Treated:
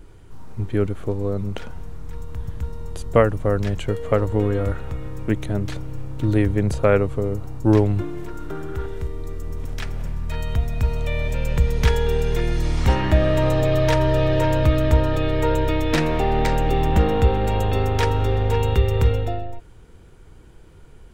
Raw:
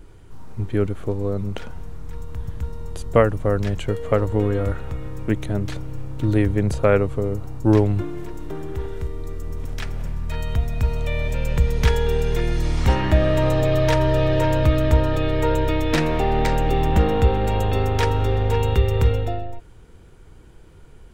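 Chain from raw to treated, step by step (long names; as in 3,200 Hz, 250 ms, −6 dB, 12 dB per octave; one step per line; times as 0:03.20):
0:08.28–0:08.86: parametric band 1,400 Hz +13 dB 0.21 octaves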